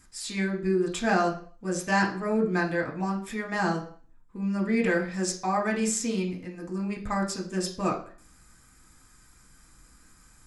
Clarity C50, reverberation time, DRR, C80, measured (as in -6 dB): 10.5 dB, 0.45 s, -1.5 dB, 14.5 dB